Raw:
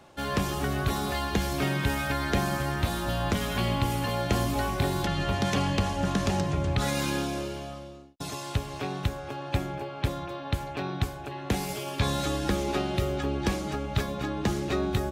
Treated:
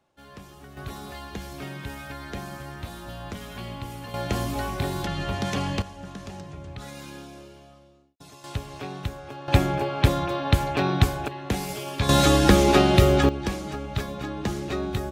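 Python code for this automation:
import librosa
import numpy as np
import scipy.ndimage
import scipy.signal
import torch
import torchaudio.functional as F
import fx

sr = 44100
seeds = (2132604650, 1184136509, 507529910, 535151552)

y = fx.gain(x, sr, db=fx.steps((0.0, -17.0), (0.77, -9.0), (4.14, -1.0), (5.82, -12.0), (8.44, -2.5), (9.48, 9.0), (11.28, 1.0), (12.09, 11.0), (13.29, -1.0)))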